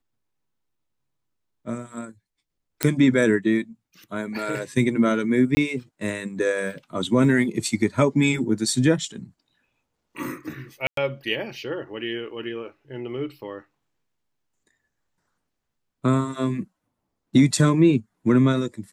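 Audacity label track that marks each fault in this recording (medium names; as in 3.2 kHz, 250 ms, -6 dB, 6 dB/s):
2.830000	2.830000	pop -3 dBFS
5.550000	5.570000	dropout 20 ms
10.870000	10.970000	dropout 103 ms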